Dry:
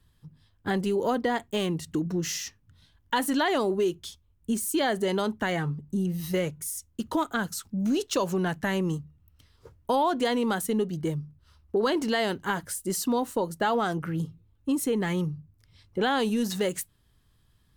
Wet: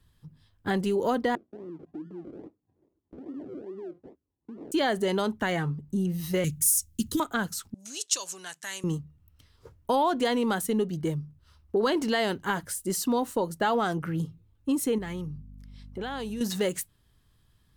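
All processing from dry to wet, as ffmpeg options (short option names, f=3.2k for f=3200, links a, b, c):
-filter_complex "[0:a]asettb=1/sr,asplit=3[a][b][c];[a]atrim=end=1.354[d];[b]atrim=start=1.35:end=4.72,asetpts=PTS-STARTPTS,afade=t=in:d=0.004:c=qsin,afade=t=out:st=3.366:d=0.004:c=qsin,acompressor=threshold=-31dB:ratio=12:attack=3.2:release=140:knee=1:detection=peak,acrusher=samples=39:mix=1:aa=0.000001:lfo=1:lforange=23.4:lforate=2.4,bandpass=f=330:t=q:w=2.6[e];[c]atrim=start=4.716[f];[d][e]acrossfade=d=0.004:c1=hsin:c2=qsin[g];[g][f]acrossfade=d=0.004:c1=qsin:c2=hsin,asettb=1/sr,asplit=3[h][i][j];[h]atrim=end=6.444[k];[i]atrim=start=6.44:end=7.2,asetpts=PTS-STARTPTS,afade=t=in:d=0.004:c=qsin,afade=t=out:st=0.756:d=0.004:c=qsin,asuperstop=centerf=790:order=4:qfactor=0.52,bass=f=250:g=7,treble=f=4k:g=12[l];[j]atrim=start=7.196[m];[k][l]acrossfade=d=0.004:c1=hsin:c2=qsin[n];[n][m]acrossfade=d=0.004:c1=qsin:c2=hsin,asettb=1/sr,asplit=3[o][p][q];[o]atrim=end=7.744[r];[p]atrim=start=7.74:end=8.84,asetpts=PTS-STARTPTS,afade=t=in:d=0.004:c=qsin,afade=t=out:st=1.096:d=0.004:c=qsin,aderivative,acontrast=28,lowpass=f=7.8k:t=q:w=1.8[s];[q]atrim=start=8.836[t];[r][s]acrossfade=d=0.004:c1=hsin:c2=qsin[u];[u][t]acrossfade=d=0.004:c1=qsin:c2=hsin,asettb=1/sr,asplit=3[v][w][x];[v]atrim=end=14.984[y];[w]atrim=start=14.98:end=16.41,asetpts=PTS-STARTPTS,afade=t=in:d=0.004:c=qsin,afade=t=out:st=1.426:d=0.004:c=qsin,acompressor=threshold=-34dB:ratio=3:attack=3.2:release=140:knee=1:detection=peak,aeval=exprs='val(0)+0.00562*(sin(2*PI*50*n/s)+sin(2*PI*2*50*n/s)/2+sin(2*PI*3*50*n/s)/3+sin(2*PI*4*50*n/s)/4+sin(2*PI*5*50*n/s)/5)':c=same[z];[x]atrim=start=16.406[aa];[y][z]acrossfade=d=0.004:c1=hsin:c2=qsin[ab];[ab][aa]acrossfade=d=0.004:c1=qsin:c2=hsin"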